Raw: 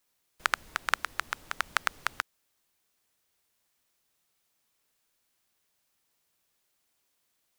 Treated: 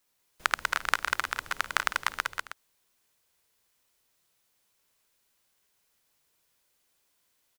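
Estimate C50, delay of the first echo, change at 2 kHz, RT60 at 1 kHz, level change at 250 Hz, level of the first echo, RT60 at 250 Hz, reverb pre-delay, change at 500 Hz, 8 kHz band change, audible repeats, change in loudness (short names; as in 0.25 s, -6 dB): none, 53 ms, +3.0 dB, none, +2.0 dB, -20.0 dB, none, none, +3.0 dB, +3.0 dB, 4, +2.5 dB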